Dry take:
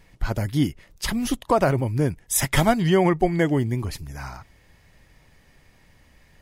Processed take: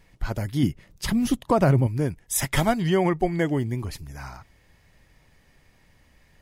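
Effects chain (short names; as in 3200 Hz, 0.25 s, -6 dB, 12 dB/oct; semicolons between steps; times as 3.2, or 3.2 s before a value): 0.63–1.87 bell 150 Hz +8.5 dB 2 oct; gain -3 dB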